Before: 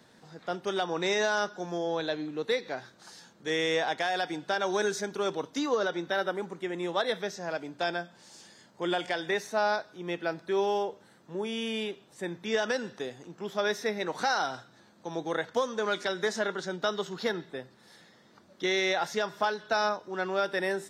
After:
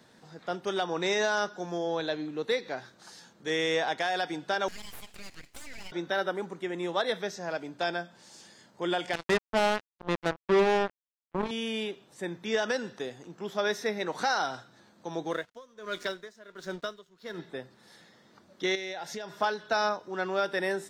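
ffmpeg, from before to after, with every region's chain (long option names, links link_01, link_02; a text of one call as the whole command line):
ffmpeg -i in.wav -filter_complex "[0:a]asettb=1/sr,asplit=3[link_01][link_02][link_03];[link_01]atrim=end=4.684[link_04];[link_02]atrim=start=4.68:end=5.92,asetpts=PTS-STARTPTS,afade=type=in:duration=0.004:curve=qsin,afade=type=out:start_time=1.236:duration=0.004:curve=qsin,highpass=frequency=860:width=0.5412,highpass=frequency=860:width=1.3066,acompressor=threshold=-39dB:ratio=3:attack=3.2:release=140:knee=1:detection=peak,aeval=exprs='abs(val(0))':channel_layout=same[link_05];[link_03]atrim=start=5.916[link_06];[link_04][link_05]acrossfade=duration=0.004:curve1=hsin:curve2=qsin[link_07];[link_07][link_06]acrossfade=duration=0.004:curve1=qsin:curve2=hsin,asettb=1/sr,asplit=3[link_08][link_09][link_10];[link_08]atrim=end=9.134[link_11];[link_09]atrim=start=9.13:end=11.51,asetpts=PTS-STARTPTS,afade=type=in:duration=0.004:curve=qsin,afade=type=out:start_time=2.376:duration=0.004:curve=qsin,aemphasis=mode=reproduction:type=riaa,acrusher=bits=3:mix=0:aa=0.5[link_12];[link_10]atrim=start=11.506[link_13];[link_11][link_12]acrossfade=duration=0.004:curve1=hsin:curve2=qsin[link_14];[link_14][link_13]acrossfade=duration=0.004:curve1=qsin:curve2=hsin,asettb=1/sr,asplit=3[link_15][link_16][link_17];[link_15]atrim=end=15.314[link_18];[link_16]atrim=start=15.31:end=17.39,asetpts=PTS-STARTPTS,afade=type=in:duration=0.004:curve=qsin,afade=type=out:start_time=2.076:duration=0.004:curve=qsin,aeval=exprs='sgn(val(0))*max(abs(val(0))-0.00335,0)':channel_layout=same,asuperstop=centerf=820:order=4:qfactor=6.3,aeval=exprs='val(0)*pow(10,-22*(0.5-0.5*cos(2*PI*1.4*n/s))/20)':channel_layout=same[link_19];[link_17]atrim=start=17.386[link_20];[link_18][link_19]acrossfade=duration=0.004:curve1=hsin:curve2=qsin[link_21];[link_21][link_20]acrossfade=duration=0.004:curve1=qsin:curve2=hsin,asettb=1/sr,asplit=3[link_22][link_23][link_24];[link_22]atrim=end=18.754[link_25];[link_23]atrim=start=18.75:end=19.31,asetpts=PTS-STARTPTS,afade=type=in:duration=0.004:curve=qsin,afade=type=out:start_time=0.556:duration=0.004:curve=qsin,equalizer=frequency=1200:width=3.9:gain=-9.5,acompressor=threshold=-35dB:ratio=4:attack=3.2:release=140:knee=1:detection=peak[link_26];[link_24]atrim=start=19.306[link_27];[link_25][link_26]acrossfade=duration=0.004:curve1=hsin:curve2=qsin[link_28];[link_28][link_27]acrossfade=duration=0.004:curve1=qsin:curve2=hsin" out.wav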